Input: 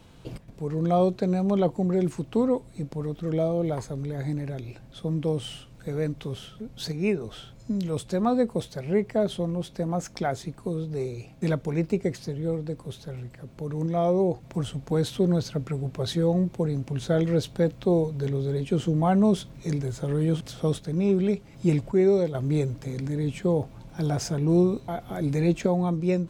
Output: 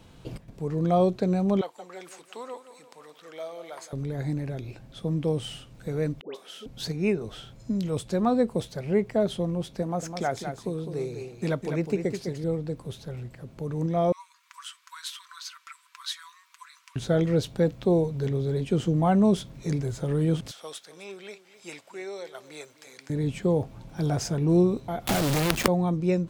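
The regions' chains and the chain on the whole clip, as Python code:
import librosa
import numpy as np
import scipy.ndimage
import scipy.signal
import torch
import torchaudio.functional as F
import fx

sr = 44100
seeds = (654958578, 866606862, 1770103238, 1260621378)

y = fx.chain(x, sr, fx.highpass(hz=1100.0, slope=12),
    fx.echo_feedback(ms=171, feedback_pct=52, wet_db=-12.5), at=(1.61, 3.93))
y = fx.chain(y, sr, fx.highpass(hz=320.0, slope=24),
    fx.dispersion(late='highs', ms=136.0, hz=1100.0), at=(6.21, 6.66))
y = fx.chain(y, sr, fx.low_shelf(hz=150.0, db=-8.0),
    fx.echo_single(ms=205, db=-7.5), at=(9.82, 12.44))
y = fx.chain(y, sr, fx.brickwall_highpass(low_hz=940.0),
    fx.comb(ms=6.0, depth=0.32), at=(14.12, 16.96))
y = fx.chain(y, sr, fx.bessel_highpass(hz=1300.0, order=2),
    fx.echo_single(ms=260, db=-15.5), at=(20.51, 23.1))
y = fx.chain(y, sr, fx.quant_companded(bits=2),
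    fx.band_squash(depth_pct=100), at=(25.07, 25.68))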